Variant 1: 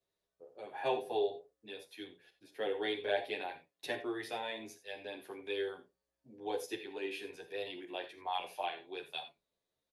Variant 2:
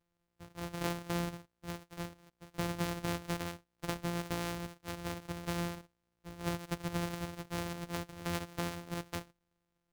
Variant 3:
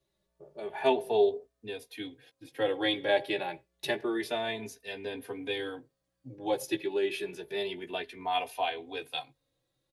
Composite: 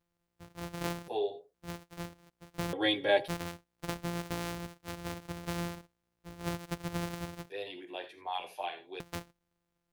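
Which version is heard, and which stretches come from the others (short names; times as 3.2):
2
1.08–1.54 from 1
2.73–3.28 from 3
7.5–9 from 1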